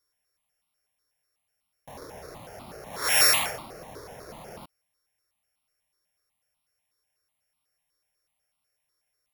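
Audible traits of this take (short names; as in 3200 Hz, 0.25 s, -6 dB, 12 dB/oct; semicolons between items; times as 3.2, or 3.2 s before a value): a buzz of ramps at a fixed pitch in blocks of 8 samples; notches that jump at a steady rate 8.1 Hz 760–1700 Hz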